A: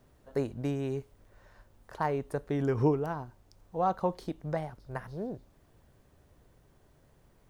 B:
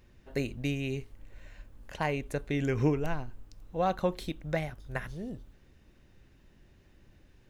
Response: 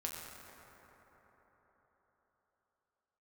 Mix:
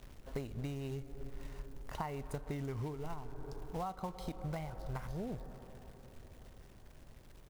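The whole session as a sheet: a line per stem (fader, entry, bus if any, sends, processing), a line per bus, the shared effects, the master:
-1.0 dB, 0.00 s, send -12.5 dB, dry
-1.0 dB, 0.4 ms, no send, companded quantiser 4-bit; auto duck -7 dB, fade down 0.25 s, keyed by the first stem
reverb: on, RT60 4.6 s, pre-delay 6 ms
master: low shelf 65 Hz +9.5 dB; compressor 16:1, threshold -36 dBFS, peak gain reduction 17.5 dB

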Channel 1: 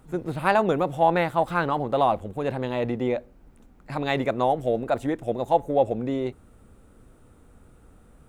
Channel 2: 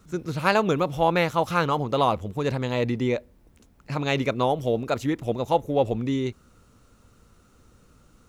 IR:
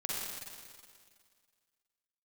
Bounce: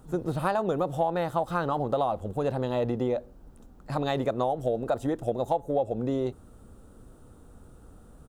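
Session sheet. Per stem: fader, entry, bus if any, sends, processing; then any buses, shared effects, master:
+2.0 dB, 0.00 s, no send, dry
-14.0 dB, 1.7 ms, no send, dry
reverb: off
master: bell 2200 Hz -11.5 dB 0.65 oct; compressor 6:1, threshold -23 dBFS, peak gain reduction 11 dB

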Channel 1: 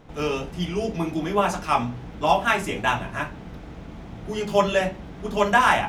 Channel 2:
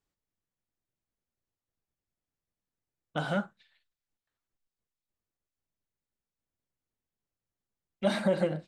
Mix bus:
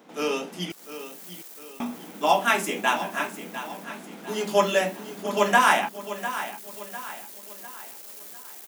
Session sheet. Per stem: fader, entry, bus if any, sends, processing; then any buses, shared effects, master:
-1.0 dB, 0.00 s, muted 0.72–1.8, no send, echo send -12 dB, steep high-pass 190 Hz 48 dB/oct
-4.5 dB, 0.70 s, no send, no echo send, infinite clipping; Chebyshev high-pass 340 Hz, order 3; limiter -35.5 dBFS, peak gain reduction 6 dB; auto duck -6 dB, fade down 0.35 s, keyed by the first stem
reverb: off
echo: feedback echo 0.7 s, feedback 43%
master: high shelf 7200 Hz +11.5 dB

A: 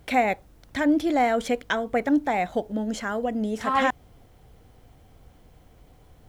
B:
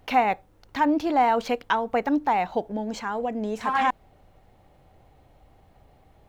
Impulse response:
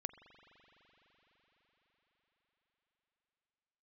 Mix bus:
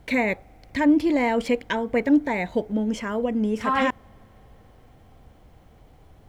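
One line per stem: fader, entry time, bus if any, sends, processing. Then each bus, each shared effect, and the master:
0.0 dB, 0.00 s, send -18.5 dB, dry
-3.0 dB, 0.00 s, no send, dry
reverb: on, RT60 5.6 s, pre-delay 42 ms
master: high shelf 4700 Hz -5.5 dB

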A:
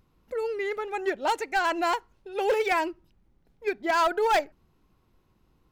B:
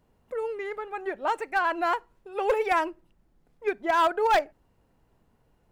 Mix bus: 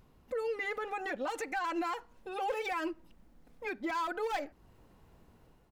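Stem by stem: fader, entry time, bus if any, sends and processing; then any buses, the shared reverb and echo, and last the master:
+2.0 dB, 0.00 s, no send, limiter -25.5 dBFS, peak gain reduction 7 dB; auto duck -9 dB, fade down 0.50 s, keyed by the second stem
-1.5 dB, 4.2 ms, no send, compressor 3:1, threshold -37 dBFS, peak gain reduction 13 dB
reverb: off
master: AGC gain up to 6 dB; limiter -27.5 dBFS, peak gain reduction 9.5 dB

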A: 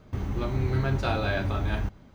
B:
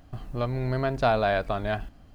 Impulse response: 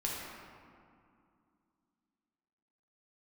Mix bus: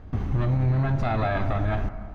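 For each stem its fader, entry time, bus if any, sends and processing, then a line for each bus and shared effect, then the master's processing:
0.0 dB, 0.00 s, no send, LPF 3700 Hz 6 dB/oct
0.0 dB, 0.00 s, send -12.5 dB, minimum comb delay 1.1 ms; LPF 2300 Hz 24 dB/oct; low shelf 290 Hz +10 dB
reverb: on, RT60 2.4 s, pre-delay 4 ms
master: limiter -16.5 dBFS, peak gain reduction 8.5 dB

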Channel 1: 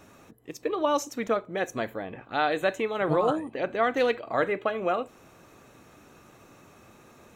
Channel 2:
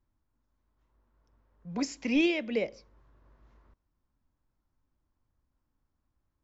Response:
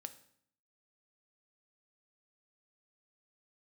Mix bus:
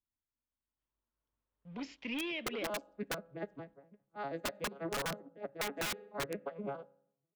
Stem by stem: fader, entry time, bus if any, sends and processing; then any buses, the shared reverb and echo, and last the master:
-2.0 dB, 1.80 s, send -5 dB, arpeggiated vocoder minor triad, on C#3, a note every 81 ms; low-pass opened by the level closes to 780 Hz, open at -24.5 dBFS; upward expander 2.5:1, over -43 dBFS
-15.5 dB, 0.00 s, no send, low shelf 89 Hz -5.5 dB; sample leveller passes 2; synth low-pass 3200 Hz, resonance Q 3.2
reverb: on, RT60 0.65 s, pre-delay 3 ms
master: wrapped overs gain 26.5 dB; compressor, threshold -34 dBFS, peak gain reduction 5 dB

